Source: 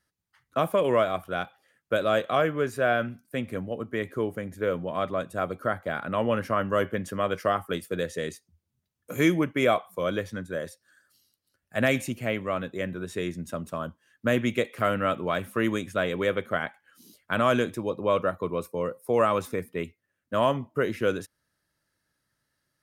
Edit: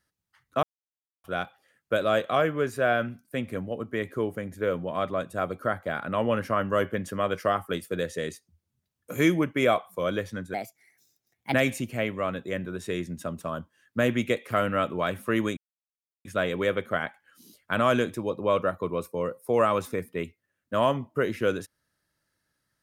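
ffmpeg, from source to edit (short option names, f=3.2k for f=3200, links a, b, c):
-filter_complex "[0:a]asplit=6[a][b][c][d][e][f];[a]atrim=end=0.63,asetpts=PTS-STARTPTS,afade=t=out:st=0.626:d=0.004:c=hsin[g];[b]atrim=start=0.63:end=1.24,asetpts=PTS-STARTPTS,volume=0[h];[c]atrim=start=1.24:end=10.544,asetpts=PTS-STARTPTS,afade=t=in:d=0.004:c=hsin[i];[d]atrim=start=10.54:end=11.82,asetpts=PTS-STARTPTS,asetrate=56448,aresample=44100[j];[e]atrim=start=11.816:end=15.85,asetpts=PTS-STARTPTS,afade=t=out:st=4.03:d=0.004:c=hsin,apad=pad_dur=0.68[k];[f]atrim=start=15.85,asetpts=PTS-STARTPTS,afade=t=in:d=0.004:c=hsin[l];[g][h][i]concat=n=3:v=0:a=1[m];[m][j]acrossfade=d=0.004:c1=hsin:c2=hsin[n];[k][l]concat=n=2:v=0:a=1[o];[n][o]acrossfade=d=0.004:c1=hsin:c2=hsin"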